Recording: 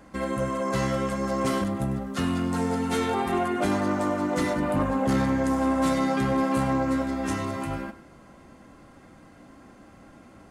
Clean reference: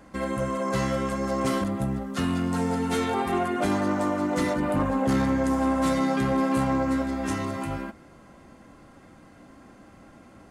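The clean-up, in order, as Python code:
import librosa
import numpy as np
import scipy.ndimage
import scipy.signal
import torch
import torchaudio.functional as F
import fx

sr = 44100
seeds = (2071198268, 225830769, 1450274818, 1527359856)

y = fx.fix_echo_inverse(x, sr, delay_ms=99, level_db=-15.0)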